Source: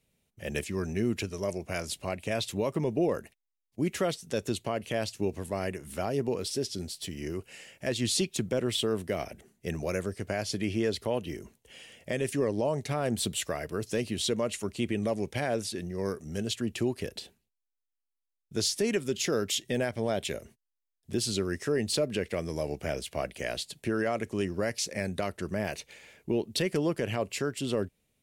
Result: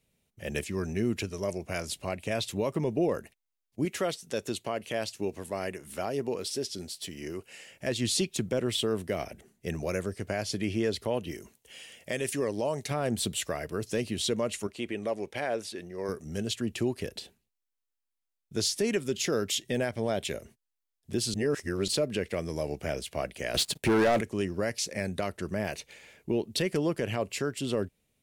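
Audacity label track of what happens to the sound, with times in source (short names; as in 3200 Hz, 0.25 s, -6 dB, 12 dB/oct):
3.850000	7.710000	low shelf 170 Hz -9.5 dB
11.310000	12.910000	tilt +1.5 dB/oct
14.670000	16.090000	tone controls bass -12 dB, treble -6 dB
21.340000	21.880000	reverse
23.540000	24.210000	sample leveller passes 3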